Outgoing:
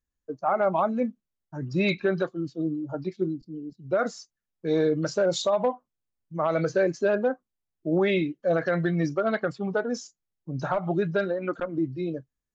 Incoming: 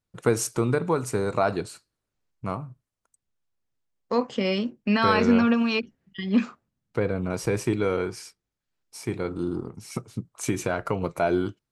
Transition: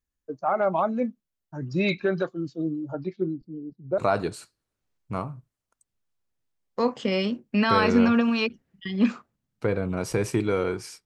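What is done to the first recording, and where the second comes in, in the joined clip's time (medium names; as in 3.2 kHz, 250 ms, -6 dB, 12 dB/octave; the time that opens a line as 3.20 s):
outgoing
2.93–3.98 s: low-pass 4.5 kHz -> 1 kHz
3.98 s: go over to incoming from 1.31 s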